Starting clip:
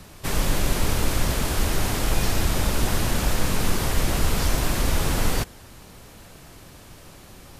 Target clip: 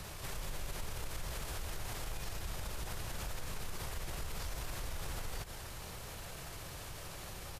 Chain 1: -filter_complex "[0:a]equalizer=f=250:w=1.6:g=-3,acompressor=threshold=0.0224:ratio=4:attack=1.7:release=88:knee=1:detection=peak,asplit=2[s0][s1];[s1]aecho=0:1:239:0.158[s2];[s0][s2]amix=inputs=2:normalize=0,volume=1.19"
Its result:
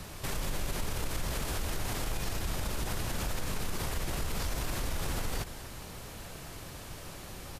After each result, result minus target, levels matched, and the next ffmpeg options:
compression: peak gain reduction -7 dB; 250 Hz band +4.0 dB
-filter_complex "[0:a]equalizer=f=250:w=1.6:g=-3,acompressor=threshold=0.0075:ratio=4:attack=1.7:release=88:knee=1:detection=peak,asplit=2[s0][s1];[s1]aecho=0:1:239:0.158[s2];[s0][s2]amix=inputs=2:normalize=0,volume=1.19"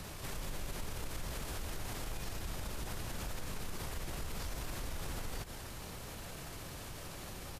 250 Hz band +4.0 dB
-filter_complex "[0:a]equalizer=f=250:w=1.6:g=-10.5,acompressor=threshold=0.0075:ratio=4:attack=1.7:release=88:knee=1:detection=peak,asplit=2[s0][s1];[s1]aecho=0:1:239:0.158[s2];[s0][s2]amix=inputs=2:normalize=0,volume=1.19"

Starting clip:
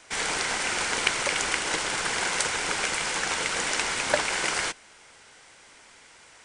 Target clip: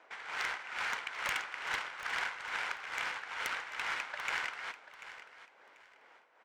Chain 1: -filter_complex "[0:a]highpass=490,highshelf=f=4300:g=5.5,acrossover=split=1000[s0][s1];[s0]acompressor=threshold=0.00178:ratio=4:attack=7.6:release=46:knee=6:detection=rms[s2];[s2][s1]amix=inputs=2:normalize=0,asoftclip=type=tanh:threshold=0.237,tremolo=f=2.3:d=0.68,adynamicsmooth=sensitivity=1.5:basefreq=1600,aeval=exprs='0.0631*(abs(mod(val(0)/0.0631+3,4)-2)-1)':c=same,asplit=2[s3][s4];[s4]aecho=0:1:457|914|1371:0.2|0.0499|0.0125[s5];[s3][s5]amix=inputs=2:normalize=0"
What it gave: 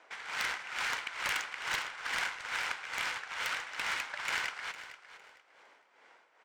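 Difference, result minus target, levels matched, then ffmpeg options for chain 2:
echo 282 ms early; 8 kHz band +3.5 dB
-filter_complex "[0:a]highpass=490,highshelf=f=4300:g=-3.5,acrossover=split=1000[s0][s1];[s0]acompressor=threshold=0.00178:ratio=4:attack=7.6:release=46:knee=6:detection=rms[s2];[s2][s1]amix=inputs=2:normalize=0,asoftclip=type=tanh:threshold=0.237,tremolo=f=2.3:d=0.68,adynamicsmooth=sensitivity=1.5:basefreq=1600,aeval=exprs='0.0631*(abs(mod(val(0)/0.0631+3,4)-2)-1)':c=same,asplit=2[s3][s4];[s4]aecho=0:1:739|1478|2217:0.2|0.0499|0.0125[s5];[s3][s5]amix=inputs=2:normalize=0"

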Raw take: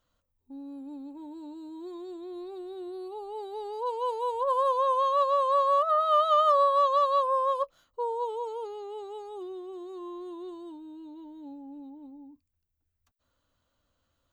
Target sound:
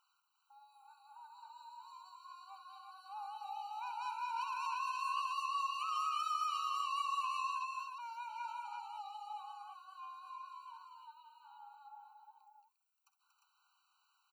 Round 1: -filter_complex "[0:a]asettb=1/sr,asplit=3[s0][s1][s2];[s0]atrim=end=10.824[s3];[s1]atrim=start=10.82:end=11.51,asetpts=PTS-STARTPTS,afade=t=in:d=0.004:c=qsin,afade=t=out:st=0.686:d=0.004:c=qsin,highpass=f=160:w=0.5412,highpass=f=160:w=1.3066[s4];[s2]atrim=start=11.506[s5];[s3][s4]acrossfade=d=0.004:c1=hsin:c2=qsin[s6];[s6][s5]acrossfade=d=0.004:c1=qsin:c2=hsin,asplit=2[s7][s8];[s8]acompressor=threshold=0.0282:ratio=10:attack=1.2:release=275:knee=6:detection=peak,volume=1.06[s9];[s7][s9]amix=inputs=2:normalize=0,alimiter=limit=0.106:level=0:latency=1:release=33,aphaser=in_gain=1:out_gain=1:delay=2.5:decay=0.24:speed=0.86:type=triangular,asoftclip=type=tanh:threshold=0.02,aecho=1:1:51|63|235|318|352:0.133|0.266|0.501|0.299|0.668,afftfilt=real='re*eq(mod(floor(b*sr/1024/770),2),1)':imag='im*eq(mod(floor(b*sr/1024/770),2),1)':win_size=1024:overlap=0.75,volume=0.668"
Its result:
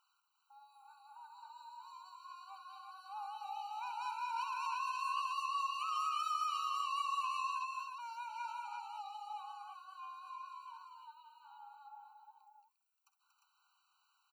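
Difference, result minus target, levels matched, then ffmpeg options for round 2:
compression: peak gain reduction -7.5 dB
-filter_complex "[0:a]asettb=1/sr,asplit=3[s0][s1][s2];[s0]atrim=end=10.824[s3];[s1]atrim=start=10.82:end=11.51,asetpts=PTS-STARTPTS,afade=t=in:d=0.004:c=qsin,afade=t=out:st=0.686:d=0.004:c=qsin,highpass=f=160:w=0.5412,highpass=f=160:w=1.3066[s4];[s2]atrim=start=11.506[s5];[s3][s4]acrossfade=d=0.004:c1=hsin:c2=qsin[s6];[s6][s5]acrossfade=d=0.004:c1=qsin:c2=hsin,asplit=2[s7][s8];[s8]acompressor=threshold=0.0106:ratio=10:attack=1.2:release=275:knee=6:detection=peak,volume=1.06[s9];[s7][s9]amix=inputs=2:normalize=0,alimiter=limit=0.106:level=0:latency=1:release=33,aphaser=in_gain=1:out_gain=1:delay=2.5:decay=0.24:speed=0.86:type=triangular,asoftclip=type=tanh:threshold=0.02,aecho=1:1:51|63|235|318|352:0.133|0.266|0.501|0.299|0.668,afftfilt=real='re*eq(mod(floor(b*sr/1024/770),2),1)':imag='im*eq(mod(floor(b*sr/1024/770),2),1)':win_size=1024:overlap=0.75,volume=0.668"

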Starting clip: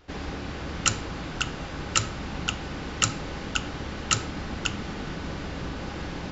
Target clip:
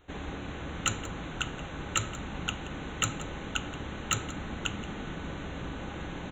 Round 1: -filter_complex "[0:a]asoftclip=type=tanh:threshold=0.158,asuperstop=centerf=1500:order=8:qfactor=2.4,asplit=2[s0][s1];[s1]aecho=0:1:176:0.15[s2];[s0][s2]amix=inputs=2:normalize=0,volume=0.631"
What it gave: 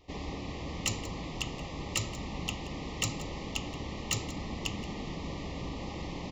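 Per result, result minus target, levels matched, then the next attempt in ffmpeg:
saturation: distortion +9 dB; 2 kHz band -2.5 dB
-filter_complex "[0:a]asoftclip=type=tanh:threshold=0.422,asuperstop=centerf=1500:order=8:qfactor=2.4,asplit=2[s0][s1];[s1]aecho=0:1:176:0.15[s2];[s0][s2]amix=inputs=2:normalize=0,volume=0.631"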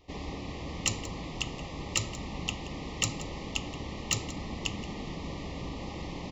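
2 kHz band -2.5 dB
-filter_complex "[0:a]asoftclip=type=tanh:threshold=0.422,asuperstop=centerf=5000:order=8:qfactor=2.4,asplit=2[s0][s1];[s1]aecho=0:1:176:0.15[s2];[s0][s2]amix=inputs=2:normalize=0,volume=0.631"

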